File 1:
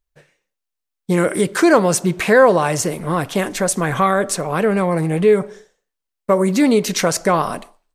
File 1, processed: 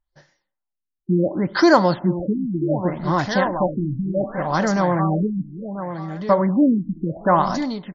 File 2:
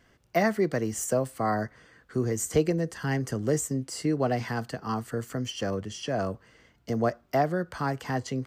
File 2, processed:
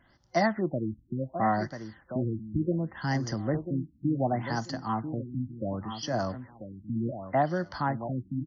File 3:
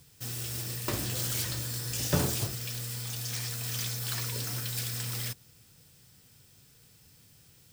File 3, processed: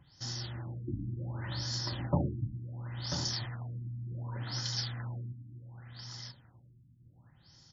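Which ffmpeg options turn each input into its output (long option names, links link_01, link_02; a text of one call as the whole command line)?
ffmpeg -i in.wav -filter_complex "[0:a]superequalizer=7b=0.316:9b=1.58:12b=0.316:14b=2.24,asplit=2[link_01][link_02];[link_02]aecho=0:1:990|1980|2970:0.335|0.0737|0.0162[link_03];[link_01][link_03]amix=inputs=2:normalize=0,afftfilt=real='re*lt(b*sr/1024,320*pow(7300/320,0.5+0.5*sin(2*PI*0.68*pts/sr)))':imag='im*lt(b*sr/1024,320*pow(7300/320,0.5+0.5*sin(2*PI*0.68*pts/sr)))':win_size=1024:overlap=0.75,volume=-1dB" out.wav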